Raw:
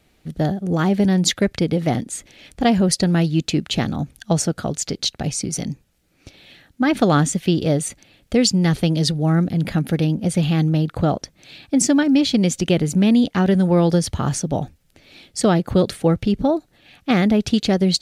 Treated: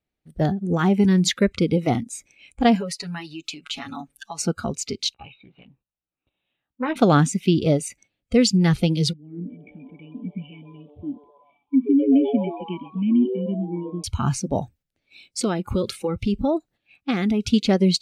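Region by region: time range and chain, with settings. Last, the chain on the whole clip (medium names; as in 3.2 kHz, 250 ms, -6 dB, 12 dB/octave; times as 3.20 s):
2.75–4.39 s: peaking EQ 100 Hz -11 dB 1.9 oct + comb 7 ms, depth 83% + compression 16:1, threshold -22 dBFS
5.14–6.96 s: rippled Chebyshev low-pass 3.9 kHz, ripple 9 dB + doubling 16 ms -8.5 dB + loudspeaker Doppler distortion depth 0.38 ms
9.13–14.04 s: cascade formant filter i + frequency-shifting echo 128 ms, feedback 56%, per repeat +140 Hz, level -10 dB
14.57–17.51 s: treble shelf 3.6 kHz +3.5 dB + compression 12:1, threshold -16 dBFS
whole clip: gate -46 dBFS, range -8 dB; treble shelf 5 kHz -7 dB; spectral noise reduction 17 dB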